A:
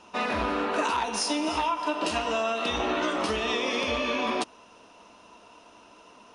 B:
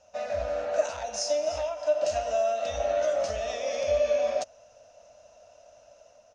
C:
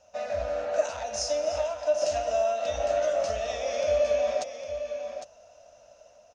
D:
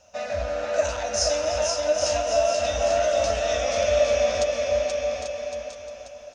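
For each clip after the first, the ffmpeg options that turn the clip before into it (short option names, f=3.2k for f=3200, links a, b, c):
-af "firequalizer=gain_entry='entry(110,0);entry(170,-13);entry(380,-23);entry(580,11);entry(970,-19);entry(1500,-8);entry(3200,-13);entry(6400,3);entry(10000,-21)':delay=0.05:min_phase=1,dynaudnorm=f=190:g=5:m=3.5dB,volume=-3.5dB"
-af "aecho=1:1:806:0.355"
-af "equalizer=f=650:w=0.89:g=-5.5,aecho=1:1:480|840|1110|1312|1464:0.631|0.398|0.251|0.158|0.1,volume=7dB"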